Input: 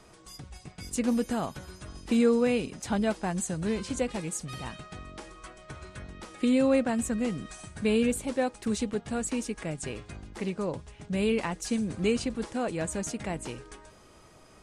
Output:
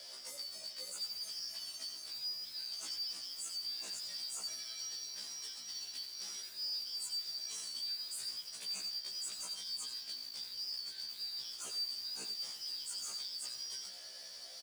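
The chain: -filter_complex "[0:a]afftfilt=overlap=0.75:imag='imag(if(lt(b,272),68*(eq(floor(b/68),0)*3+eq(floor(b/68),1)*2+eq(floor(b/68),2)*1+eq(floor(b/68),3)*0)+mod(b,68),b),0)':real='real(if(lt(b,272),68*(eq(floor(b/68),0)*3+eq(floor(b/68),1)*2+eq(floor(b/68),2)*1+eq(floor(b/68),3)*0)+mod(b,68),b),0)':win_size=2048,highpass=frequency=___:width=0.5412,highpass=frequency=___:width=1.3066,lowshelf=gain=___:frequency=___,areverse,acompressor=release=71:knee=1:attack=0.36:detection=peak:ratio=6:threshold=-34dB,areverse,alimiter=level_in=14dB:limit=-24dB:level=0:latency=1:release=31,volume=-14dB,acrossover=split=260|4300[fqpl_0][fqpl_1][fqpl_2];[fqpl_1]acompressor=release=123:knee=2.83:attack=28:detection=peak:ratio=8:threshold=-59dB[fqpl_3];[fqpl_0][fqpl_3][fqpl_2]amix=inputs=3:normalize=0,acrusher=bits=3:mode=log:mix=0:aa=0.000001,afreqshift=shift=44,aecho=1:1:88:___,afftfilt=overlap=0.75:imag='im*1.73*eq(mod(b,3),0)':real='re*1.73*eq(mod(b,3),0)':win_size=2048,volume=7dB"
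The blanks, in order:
90, 90, -8.5, 150, 0.316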